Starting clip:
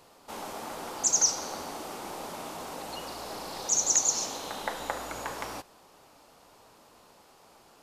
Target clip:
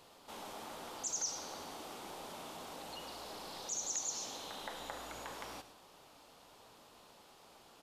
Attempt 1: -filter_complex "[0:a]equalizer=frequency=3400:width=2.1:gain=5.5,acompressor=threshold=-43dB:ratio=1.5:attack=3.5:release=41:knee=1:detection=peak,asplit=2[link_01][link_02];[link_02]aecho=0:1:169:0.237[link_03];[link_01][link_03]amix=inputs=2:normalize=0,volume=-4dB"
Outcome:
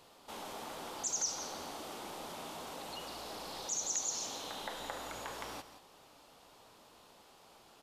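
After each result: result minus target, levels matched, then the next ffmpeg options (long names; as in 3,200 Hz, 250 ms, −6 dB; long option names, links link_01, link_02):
echo 61 ms late; downward compressor: peak gain reduction −2.5 dB
-filter_complex "[0:a]equalizer=frequency=3400:width=2.1:gain=5.5,acompressor=threshold=-43dB:ratio=1.5:attack=3.5:release=41:knee=1:detection=peak,asplit=2[link_01][link_02];[link_02]aecho=0:1:108:0.237[link_03];[link_01][link_03]amix=inputs=2:normalize=0,volume=-4dB"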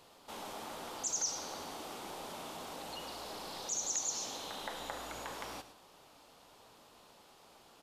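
downward compressor: peak gain reduction −2.5 dB
-filter_complex "[0:a]equalizer=frequency=3400:width=2.1:gain=5.5,acompressor=threshold=-51dB:ratio=1.5:attack=3.5:release=41:knee=1:detection=peak,asplit=2[link_01][link_02];[link_02]aecho=0:1:108:0.237[link_03];[link_01][link_03]amix=inputs=2:normalize=0,volume=-4dB"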